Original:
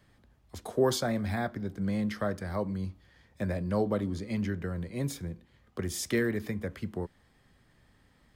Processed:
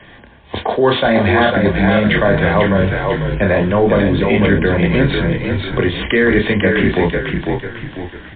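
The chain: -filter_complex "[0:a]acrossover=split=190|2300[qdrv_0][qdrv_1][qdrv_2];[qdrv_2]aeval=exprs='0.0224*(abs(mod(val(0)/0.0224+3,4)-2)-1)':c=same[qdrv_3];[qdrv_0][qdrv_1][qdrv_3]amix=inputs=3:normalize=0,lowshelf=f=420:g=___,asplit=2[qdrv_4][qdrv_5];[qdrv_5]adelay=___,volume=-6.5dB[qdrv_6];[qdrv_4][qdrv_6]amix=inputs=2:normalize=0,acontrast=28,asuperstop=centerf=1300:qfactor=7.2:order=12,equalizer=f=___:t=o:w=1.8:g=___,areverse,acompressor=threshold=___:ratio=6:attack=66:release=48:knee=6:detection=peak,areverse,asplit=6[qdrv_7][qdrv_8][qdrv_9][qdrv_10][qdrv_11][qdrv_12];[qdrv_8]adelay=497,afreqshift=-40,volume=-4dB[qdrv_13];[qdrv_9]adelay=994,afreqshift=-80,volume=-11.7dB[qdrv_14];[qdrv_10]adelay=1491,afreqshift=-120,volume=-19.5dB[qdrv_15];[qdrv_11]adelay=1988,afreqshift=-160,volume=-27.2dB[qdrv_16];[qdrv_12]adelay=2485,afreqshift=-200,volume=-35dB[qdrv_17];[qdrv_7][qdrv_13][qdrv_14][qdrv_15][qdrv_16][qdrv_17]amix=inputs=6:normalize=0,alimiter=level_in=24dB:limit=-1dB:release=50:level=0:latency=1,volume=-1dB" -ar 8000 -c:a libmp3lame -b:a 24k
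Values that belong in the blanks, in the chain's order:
-12, 30, 330, 2.5, -39dB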